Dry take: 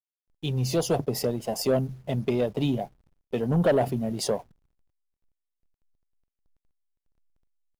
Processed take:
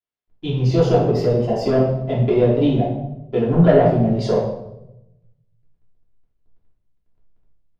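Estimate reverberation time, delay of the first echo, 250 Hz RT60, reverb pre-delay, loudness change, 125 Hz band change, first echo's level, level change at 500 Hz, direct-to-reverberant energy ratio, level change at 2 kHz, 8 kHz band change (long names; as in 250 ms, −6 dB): 0.90 s, no echo audible, 1.1 s, 3 ms, +9.0 dB, +10.5 dB, no echo audible, +9.5 dB, −6.0 dB, +5.0 dB, can't be measured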